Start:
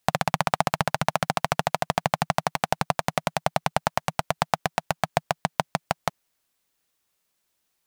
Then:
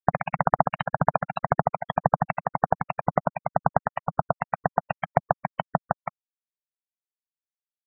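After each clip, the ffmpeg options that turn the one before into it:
ffmpeg -i in.wav -filter_complex "[0:a]acrossover=split=1700[link_01][link_02];[link_01]aeval=exprs='val(0)*(1-0.7/2+0.7/2*cos(2*PI*1.9*n/s))':channel_layout=same[link_03];[link_02]aeval=exprs='val(0)*(1-0.7/2-0.7/2*cos(2*PI*1.9*n/s))':channel_layout=same[link_04];[link_03][link_04]amix=inputs=2:normalize=0,afftfilt=real='re*gte(hypot(re,im),0.0708)':imag='im*gte(hypot(re,im),0.0708)':win_size=1024:overlap=0.75,volume=4.5dB" out.wav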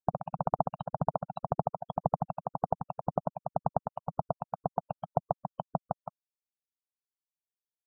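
ffmpeg -i in.wav -af "asuperstop=centerf=2000:order=4:qfactor=0.61,volume=-6.5dB" out.wav

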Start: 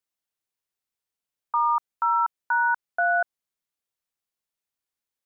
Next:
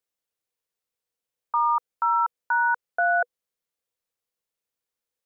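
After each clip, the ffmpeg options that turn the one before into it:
ffmpeg -i in.wav -af "equalizer=frequency=490:width_type=o:width=0.27:gain=11" out.wav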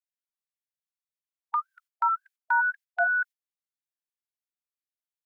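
ffmpeg -i in.wav -af "agate=range=-13dB:threshold=-34dB:ratio=16:detection=peak,afftfilt=real='re*gte(b*sr/1024,680*pow(1600/680,0.5+0.5*sin(2*PI*1.9*pts/sr)))':imag='im*gte(b*sr/1024,680*pow(1600/680,0.5+0.5*sin(2*PI*1.9*pts/sr)))':win_size=1024:overlap=0.75" out.wav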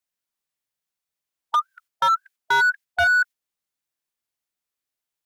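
ffmpeg -i in.wav -af "asoftclip=type=hard:threshold=-23dB,volume=8dB" out.wav

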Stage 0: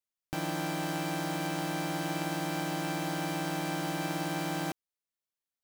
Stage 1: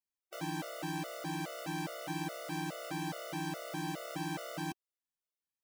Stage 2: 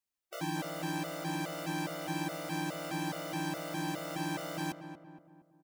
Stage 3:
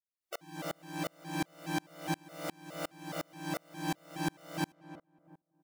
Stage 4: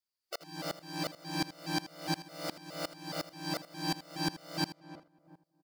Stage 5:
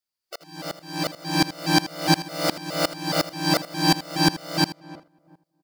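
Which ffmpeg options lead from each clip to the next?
ffmpeg -i in.wav -af "afftfilt=real='re*gt(sin(2*PI*2.4*pts/sr)*(1-2*mod(floor(b*sr/1024/380),2)),0)':imag='im*gt(sin(2*PI*2.4*pts/sr)*(1-2*mod(floor(b*sr/1024/380),2)),0)':win_size=1024:overlap=0.75,volume=-3dB" out.wav
ffmpeg -i in.wav -filter_complex "[0:a]asplit=2[link_01][link_02];[link_02]adelay=233,lowpass=frequency=1500:poles=1,volume=-9dB,asplit=2[link_03][link_04];[link_04]adelay=233,lowpass=frequency=1500:poles=1,volume=0.5,asplit=2[link_05][link_06];[link_06]adelay=233,lowpass=frequency=1500:poles=1,volume=0.5,asplit=2[link_07][link_08];[link_08]adelay=233,lowpass=frequency=1500:poles=1,volume=0.5,asplit=2[link_09][link_10];[link_10]adelay=233,lowpass=frequency=1500:poles=1,volume=0.5,asplit=2[link_11][link_12];[link_12]adelay=233,lowpass=frequency=1500:poles=1,volume=0.5[link_13];[link_01][link_03][link_05][link_07][link_09][link_11][link_13]amix=inputs=7:normalize=0,volume=2.5dB" out.wav
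ffmpeg -i in.wav -af "aeval=exprs='val(0)*pow(10,-36*if(lt(mod(-2.8*n/s,1),2*abs(-2.8)/1000),1-mod(-2.8*n/s,1)/(2*abs(-2.8)/1000),(mod(-2.8*n/s,1)-2*abs(-2.8)/1000)/(1-2*abs(-2.8)/1000))/20)':channel_layout=same,volume=6.5dB" out.wav
ffmpeg -i in.wav -af "equalizer=frequency=4700:width=4.7:gain=14.5,aecho=1:1:80:0.178" out.wav
ffmpeg -i in.wav -af "dynaudnorm=framelen=210:gausssize=11:maxgain=12.5dB,volume=2.5dB" out.wav

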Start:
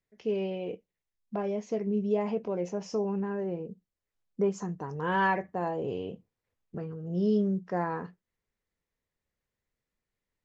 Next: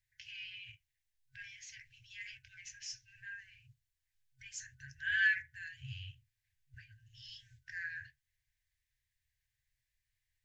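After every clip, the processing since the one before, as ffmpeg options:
ffmpeg -i in.wav -af "afftfilt=real='re*(1-between(b*sr/4096,130,1500))':imag='im*(1-between(b*sr/4096,130,1500))':win_size=4096:overlap=0.75,volume=3dB" out.wav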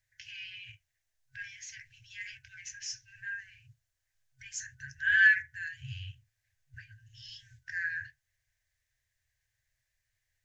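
ffmpeg -i in.wav -af "equalizer=frequency=100:width_type=o:width=0.67:gain=5,equalizer=frequency=630:width_type=o:width=0.67:gain=10,equalizer=frequency=1600:width_type=o:width=0.67:gain=7,equalizer=frequency=6300:width_type=o:width=0.67:gain=6,volume=1dB" out.wav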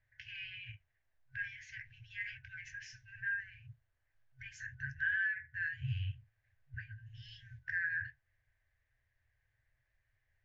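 ffmpeg -i in.wav -af "acompressor=threshold=-35dB:ratio=12,lowpass=1800,volume=5.5dB" out.wav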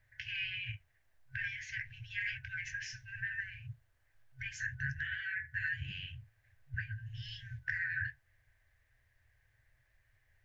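ffmpeg -i in.wav -af "afftfilt=real='re*lt(hypot(re,im),0.0891)':imag='im*lt(hypot(re,im),0.0891)':win_size=1024:overlap=0.75,volume=7.5dB" out.wav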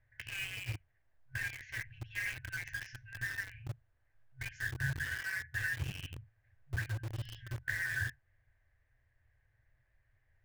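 ffmpeg -i in.wav -filter_complex "[0:a]lowpass=frequency=1300:poles=1,asplit=2[link_01][link_02];[link_02]acrusher=bits=6:mix=0:aa=0.000001,volume=-3dB[link_03];[link_01][link_03]amix=inputs=2:normalize=0" out.wav

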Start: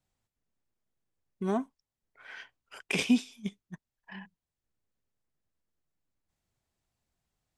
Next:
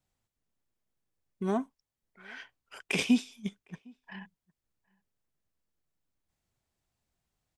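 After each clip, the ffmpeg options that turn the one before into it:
ffmpeg -i in.wav -filter_complex "[0:a]asplit=2[link_01][link_02];[link_02]adelay=758,volume=-28dB,highshelf=frequency=4000:gain=-17.1[link_03];[link_01][link_03]amix=inputs=2:normalize=0" out.wav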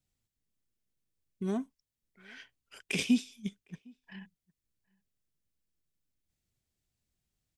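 ffmpeg -i in.wav -af "equalizer=frequency=920:width=0.75:gain=-11" out.wav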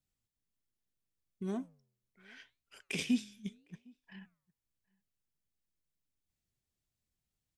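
ffmpeg -i in.wav -af "flanger=delay=4.9:depth=7.3:regen=-89:speed=0.75:shape=sinusoidal" out.wav

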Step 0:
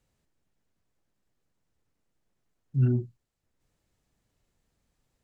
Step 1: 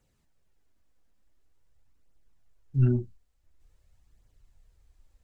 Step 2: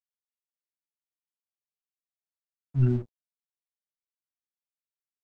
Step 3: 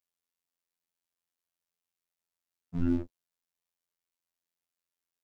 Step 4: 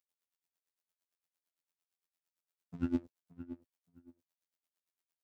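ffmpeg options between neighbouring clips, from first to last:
ffmpeg -i in.wav -af "asubboost=boost=7.5:cutoff=71,flanger=delay=0.1:depth=4.3:regen=-34:speed=0.47:shape=triangular,volume=6dB" out.wav
ffmpeg -i in.wav -af "aeval=exprs='sgn(val(0))*max(abs(val(0))-0.00501,0)':channel_layout=same" out.wav
ffmpeg -i in.wav -filter_complex "[0:a]asplit=2[link_01][link_02];[link_02]alimiter=limit=-23dB:level=0:latency=1:release=231,volume=3dB[link_03];[link_01][link_03]amix=inputs=2:normalize=0,afftfilt=real='hypot(re,im)*cos(PI*b)':imag='0':win_size=2048:overlap=0.75" out.wav
ffmpeg -i in.wav -filter_complex "[0:a]highpass=frequency=180:poles=1,asplit=2[link_01][link_02];[link_02]adelay=572,lowpass=frequency=2000:poles=1,volume=-13dB,asplit=2[link_03][link_04];[link_04]adelay=572,lowpass=frequency=2000:poles=1,volume=0.21[link_05];[link_01][link_03][link_05]amix=inputs=3:normalize=0,aeval=exprs='val(0)*pow(10,-20*(0.5-0.5*cos(2*PI*8.8*n/s))/20)':channel_layout=same,volume=2.5dB" out.wav

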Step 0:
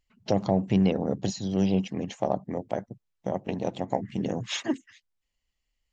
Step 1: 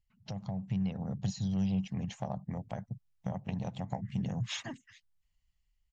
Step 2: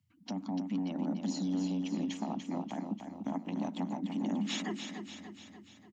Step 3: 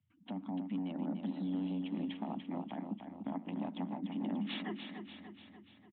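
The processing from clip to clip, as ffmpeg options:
ffmpeg -i in.wav -af "acompressor=threshold=-34dB:ratio=2,firequalizer=gain_entry='entry(150,0);entry(320,-22);entry(780,-10)':delay=0.05:min_phase=1,dynaudnorm=framelen=350:gausssize=5:maxgain=7dB" out.wav
ffmpeg -i in.wav -filter_complex "[0:a]alimiter=level_in=5dB:limit=-24dB:level=0:latency=1:release=53,volume=-5dB,afreqshift=85,asplit=2[link_01][link_02];[link_02]aecho=0:1:293|586|879|1172|1465|1758|2051:0.447|0.246|0.135|0.0743|0.0409|0.0225|0.0124[link_03];[link_01][link_03]amix=inputs=2:normalize=0,volume=2.5dB" out.wav
ffmpeg -i in.wav -af "aresample=8000,aresample=44100,volume=-3.5dB" out.wav

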